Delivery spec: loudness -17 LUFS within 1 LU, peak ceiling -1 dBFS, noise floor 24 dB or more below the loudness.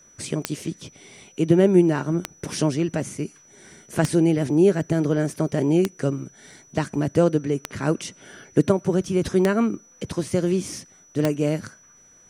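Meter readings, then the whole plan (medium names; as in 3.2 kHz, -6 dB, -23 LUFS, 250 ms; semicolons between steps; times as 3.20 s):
clicks found 7; steady tone 5.9 kHz; tone level -51 dBFS; loudness -23.0 LUFS; peak level -2.5 dBFS; loudness target -17.0 LUFS
-> de-click; band-stop 5.9 kHz, Q 30; trim +6 dB; peak limiter -1 dBFS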